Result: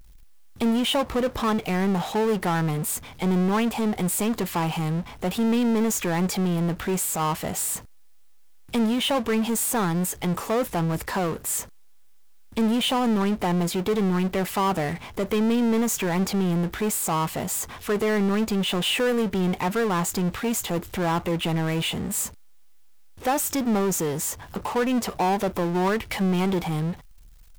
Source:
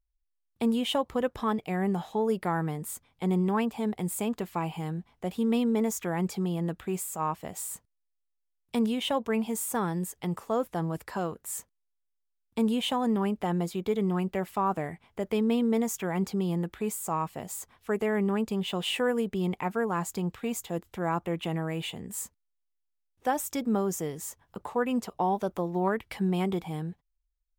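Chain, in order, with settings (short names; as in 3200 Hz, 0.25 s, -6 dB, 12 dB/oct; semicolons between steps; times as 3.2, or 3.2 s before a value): power-law curve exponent 0.5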